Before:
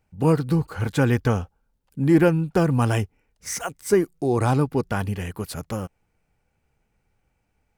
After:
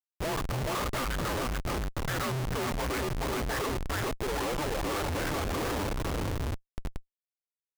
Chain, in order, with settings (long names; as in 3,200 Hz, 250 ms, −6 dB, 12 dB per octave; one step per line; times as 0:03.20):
low-pass that shuts in the quiet parts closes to 720 Hz, open at −19 dBFS
elliptic band-stop filter 240–600 Hz, stop band 70 dB
in parallel at −1 dB: downward compressor 12 to 1, threshold −32 dBFS, peak gain reduction 16 dB
on the sum: single-sideband voice off tune −290 Hz 270–2,500 Hz
on a send: feedback echo with a long and a short gap by turns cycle 705 ms, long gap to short 1.5 to 1, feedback 39%, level −10 dB
on the sum: comparator with hysteresis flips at −41.5 dBFS
level +1.5 dB